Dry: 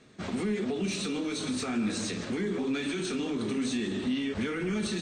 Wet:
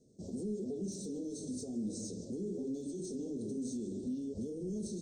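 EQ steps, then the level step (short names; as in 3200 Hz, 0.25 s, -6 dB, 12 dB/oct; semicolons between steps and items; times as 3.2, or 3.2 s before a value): Chebyshev band-stop 530–5600 Hz, order 3; -7.0 dB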